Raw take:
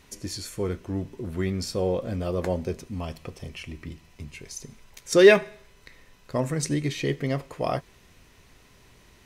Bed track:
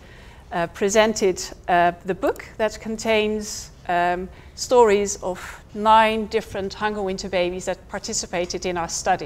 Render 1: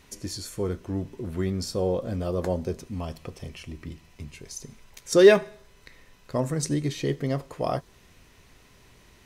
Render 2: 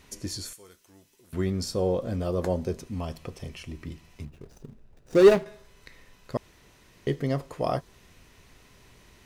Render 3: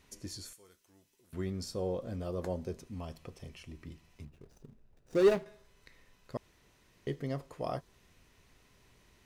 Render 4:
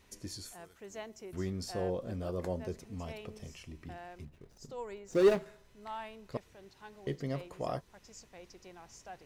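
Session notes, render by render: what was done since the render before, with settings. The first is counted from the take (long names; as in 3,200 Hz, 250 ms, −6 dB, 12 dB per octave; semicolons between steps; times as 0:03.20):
dynamic equaliser 2,300 Hz, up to −7 dB, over −51 dBFS, Q 1.7
0:00.53–0:01.33: first-order pre-emphasis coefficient 0.97; 0:04.25–0:05.46: running median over 41 samples; 0:06.37–0:07.07: fill with room tone
level −9 dB
mix in bed track −28 dB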